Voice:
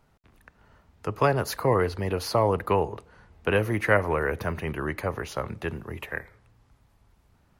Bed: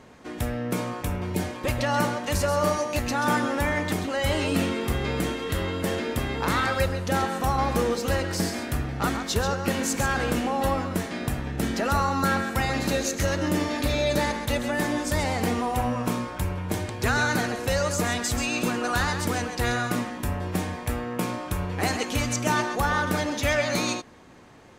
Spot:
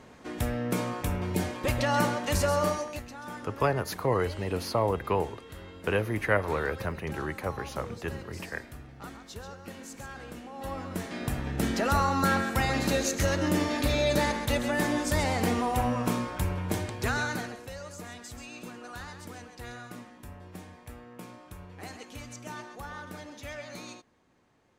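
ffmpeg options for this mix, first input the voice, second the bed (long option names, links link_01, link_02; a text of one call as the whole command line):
ffmpeg -i stem1.wav -i stem2.wav -filter_complex "[0:a]adelay=2400,volume=-4dB[link_01];[1:a]volume=14.5dB,afade=type=out:start_time=2.51:duration=0.57:silence=0.158489,afade=type=in:start_time=10.52:duration=1.01:silence=0.158489,afade=type=out:start_time=16.66:duration=1.05:silence=0.16788[link_02];[link_01][link_02]amix=inputs=2:normalize=0" out.wav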